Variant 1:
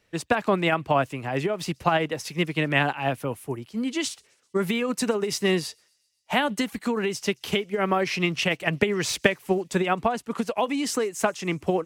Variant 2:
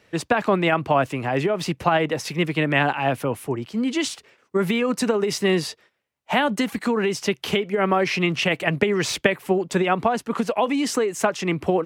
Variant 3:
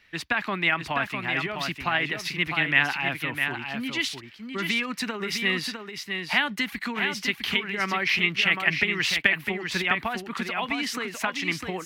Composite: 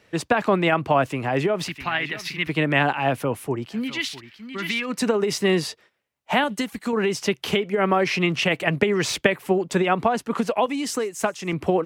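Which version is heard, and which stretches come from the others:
2
1.68–2.49 s: from 3
3.81–4.93 s: from 3, crossfade 0.24 s
6.44–6.93 s: from 1
10.66–11.53 s: from 1

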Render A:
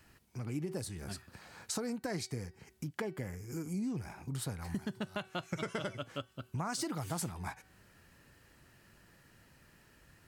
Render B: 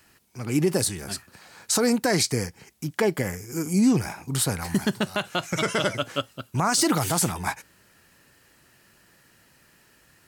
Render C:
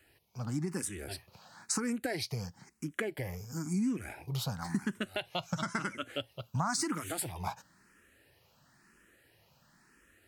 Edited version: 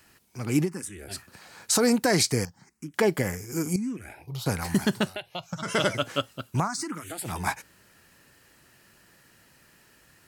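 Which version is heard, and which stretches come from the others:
B
0.65–1.14 s: from C, crossfade 0.10 s
2.45–2.94 s: from C
3.76–4.46 s: from C
5.11–5.68 s: from C, crossfade 0.10 s
6.64–7.29 s: from C, crossfade 0.10 s
not used: A

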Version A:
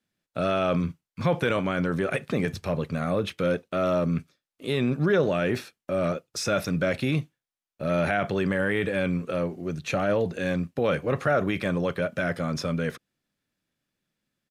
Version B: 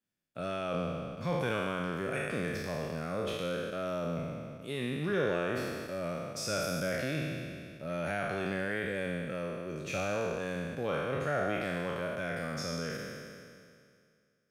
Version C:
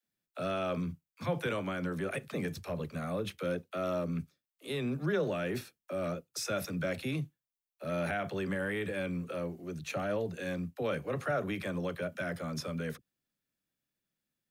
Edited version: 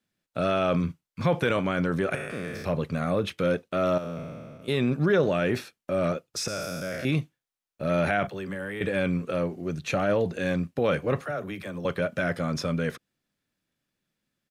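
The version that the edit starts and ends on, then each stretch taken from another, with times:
A
2.15–2.65 s: from B
3.98–4.68 s: from B
6.48–7.05 s: from B
8.27–8.81 s: from C
11.21–11.85 s: from C

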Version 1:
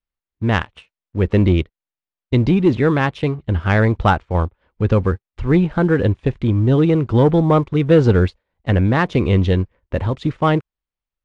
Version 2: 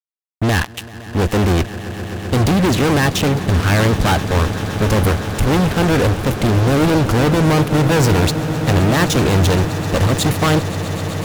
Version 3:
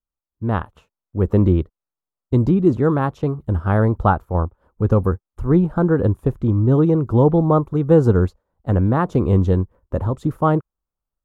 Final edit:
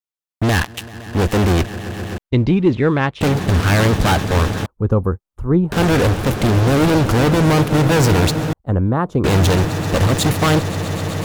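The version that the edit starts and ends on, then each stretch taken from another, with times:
2
2.18–3.21 s: from 1
4.66–5.72 s: from 3
8.53–9.24 s: from 3

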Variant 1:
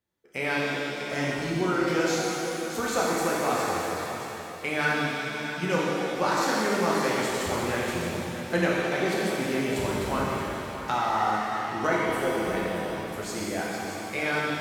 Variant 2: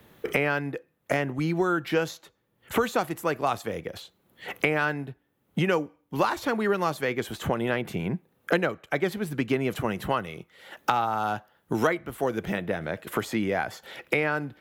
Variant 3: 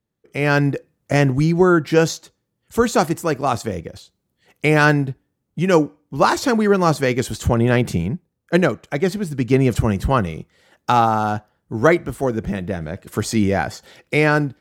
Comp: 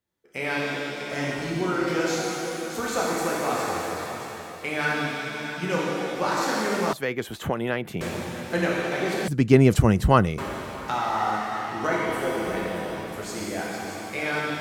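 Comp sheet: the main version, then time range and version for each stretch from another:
1
6.93–8.01 s: from 2
9.28–10.38 s: from 3

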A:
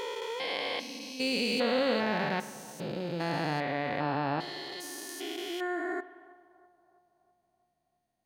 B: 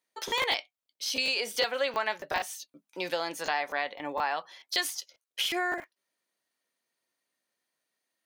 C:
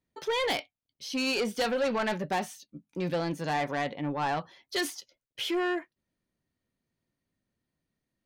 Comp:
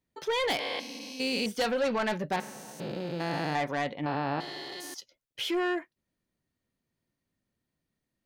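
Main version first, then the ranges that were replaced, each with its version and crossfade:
C
0.59–1.46 s: from A
2.36–3.55 s: from A
4.06–4.94 s: from A
not used: B

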